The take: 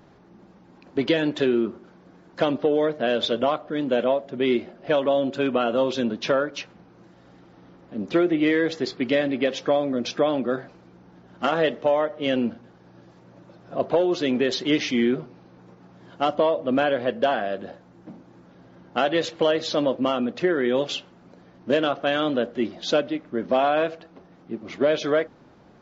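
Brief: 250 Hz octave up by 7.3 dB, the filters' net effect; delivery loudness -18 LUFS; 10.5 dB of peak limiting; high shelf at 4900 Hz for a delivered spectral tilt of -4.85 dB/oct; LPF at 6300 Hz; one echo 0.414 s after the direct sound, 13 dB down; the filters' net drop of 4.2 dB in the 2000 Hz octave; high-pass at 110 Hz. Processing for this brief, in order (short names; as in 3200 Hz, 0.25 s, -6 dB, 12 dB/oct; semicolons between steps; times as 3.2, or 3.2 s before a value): HPF 110 Hz; LPF 6300 Hz; bell 250 Hz +9 dB; bell 2000 Hz -5 dB; high shelf 4900 Hz -4.5 dB; limiter -16 dBFS; echo 0.414 s -13 dB; gain +7.5 dB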